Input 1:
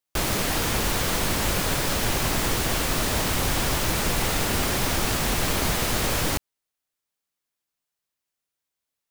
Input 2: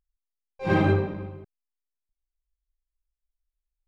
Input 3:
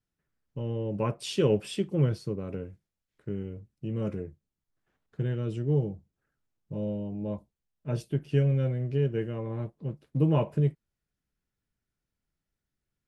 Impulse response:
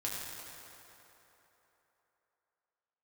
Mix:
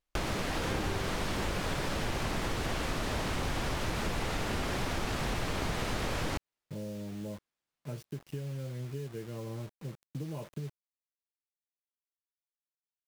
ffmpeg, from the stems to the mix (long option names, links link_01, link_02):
-filter_complex "[0:a]aemphasis=mode=reproduction:type=50fm,volume=0dB[link_01];[1:a]volume=-7.5dB[link_02];[2:a]acompressor=threshold=-32dB:ratio=6,acrusher=bits=7:mix=0:aa=0.000001,volume=-4dB[link_03];[link_01][link_02][link_03]amix=inputs=3:normalize=0,acompressor=threshold=-32dB:ratio=3"